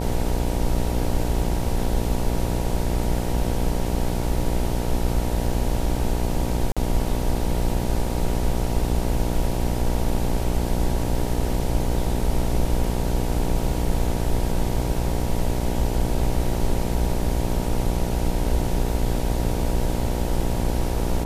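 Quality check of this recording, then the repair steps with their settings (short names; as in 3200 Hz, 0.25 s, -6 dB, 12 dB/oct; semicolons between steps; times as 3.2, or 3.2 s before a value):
buzz 60 Hz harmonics 16 -26 dBFS
6.72–6.77 gap 46 ms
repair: de-hum 60 Hz, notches 16; interpolate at 6.72, 46 ms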